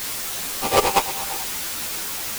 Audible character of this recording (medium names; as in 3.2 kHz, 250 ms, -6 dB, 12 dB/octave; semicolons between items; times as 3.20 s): aliases and images of a low sample rate 1.7 kHz, jitter 20%; chopped level 5.2 Hz, depth 60%, duty 10%; a quantiser's noise floor 6-bit, dither triangular; a shimmering, thickened sound